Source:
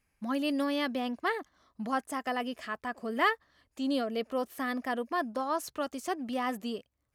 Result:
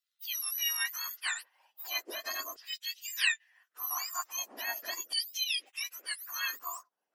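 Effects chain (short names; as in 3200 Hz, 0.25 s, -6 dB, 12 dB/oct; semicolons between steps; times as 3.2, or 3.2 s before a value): spectrum mirrored in octaves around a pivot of 1800 Hz; LFO high-pass saw down 0.39 Hz 440–4200 Hz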